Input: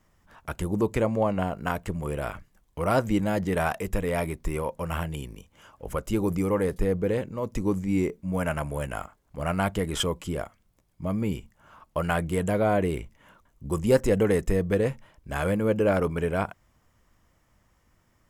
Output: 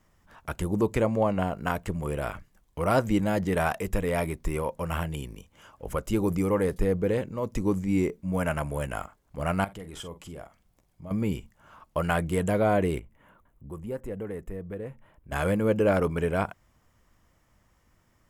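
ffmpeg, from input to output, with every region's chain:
ffmpeg -i in.wav -filter_complex "[0:a]asettb=1/sr,asplit=3[link_01][link_02][link_03];[link_01]atrim=end=9.644[link_04];[link_02]atrim=start=9.64:end=11.11,asetpts=PTS-STARTPTS,afade=type=in:duration=0.004:curve=qsin,afade=type=out:start_time=1.466:duration=0.004:curve=qsin,acompressor=threshold=-48dB:ratio=2:attack=3.2:release=140:knee=1:detection=peak,equalizer=frequency=750:width_type=o:width=0.36:gain=4.5,asplit=2[link_05][link_06];[link_06]adelay=47,volume=-12dB[link_07];[link_05][link_07]amix=inputs=2:normalize=0,atrim=end_sample=64827[link_08];[link_03]atrim=start=11.106[link_09];[link_04][link_08]acrossfade=duration=0.004:curve1=hsin:curve2=qsin[link_10];[link_10][link_09]acrossfade=duration=0.004:curve1=qsin:curve2=hsin,asettb=1/sr,asplit=3[link_11][link_12][link_13];[link_11]atrim=end=12.994[link_14];[link_12]atrim=start=12.99:end=15.32,asetpts=PTS-STARTPTS,afade=type=in:duration=0.004:curve=qsin,afade=type=out:start_time=2.326:duration=0.004:curve=qsin,equalizer=frequency=5400:width=0.85:gain=-15,acompressor=threshold=-55dB:ratio=1.5:attack=3.2:release=140:knee=1:detection=peak[link_15];[link_13]atrim=start=15.316[link_16];[link_14][link_15]acrossfade=duration=0.004:curve1=hsin:curve2=qsin[link_17];[link_17][link_16]acrossfade=duration=0.004:curve1=qsin:curve2=hsin" out.wav

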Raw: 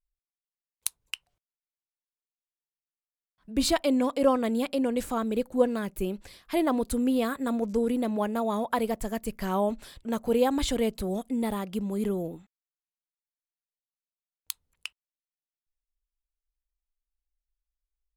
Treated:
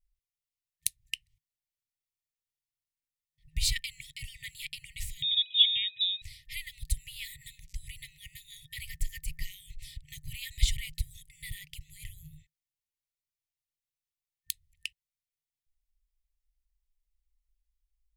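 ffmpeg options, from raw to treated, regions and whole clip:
ffmpeg -i in.wav -filter_complex "[0:a]asettb=1/sr,asplit=3[link_01][link_02][link_03];[link_01]atrim=end=5.224[link_04];[link_02]atrim=start=5.22:end=6.22,asetpts=PTS-STARTPTS,afade=type=in:duration=0.004:curve=qsin,afade=type=out:start_time=0.996:duration=0.004:curve=qsin,aeval=exprs='val(0)+0.00224*sin(2*PI*1400*n/s)':channel_layout=same,lowpass=frequency=3300:width_type=q:width=0.5098,lowpass=frequency=3300:width_type=q:width=0.6013,lowpass=frequency=3300:width_type=q:width=0.9,lowpass=frequency=3300:width_type=q:width=2.563,afreqshift=-3900[link_05];[link_03]atrim=start=6.216[link_06];[link_04][link_05]acrossfade=duration=0.004:curve1=hsin:curve2=qsin[link_07];[link_07][link_06]acrossfade=duration=0.004:curve1=qsin:curve2=hsin,lowshelf=frequency=390:gain=8.5,afftfilt=real='re*(1-between(b*sr/4096,160,1800))':imag='im*(1-between(b*sr/4096,160,1800))':win_size=4096:overlap=0.75" out.wav

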